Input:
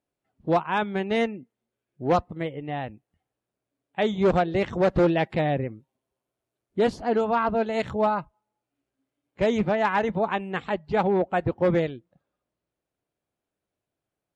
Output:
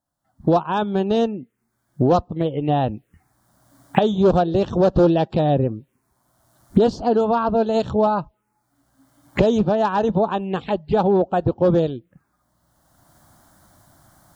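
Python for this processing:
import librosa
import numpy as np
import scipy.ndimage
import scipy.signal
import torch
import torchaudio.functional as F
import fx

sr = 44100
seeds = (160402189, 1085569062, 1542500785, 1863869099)

y = fx.recorder_agc(x, sr, target_db=-15.0, rise_db_per_s=22.0, max_gain_db=30)
y = fx.env_phaser(y, sr, low_hz=420.0, high_hz=2100.0, full_db=-23.0)
y = F.gain(torch.from_numpy(y), 5.5).numpy()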